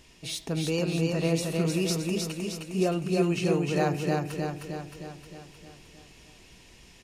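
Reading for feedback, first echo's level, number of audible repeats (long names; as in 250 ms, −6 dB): 57%, −3.0 dB, 7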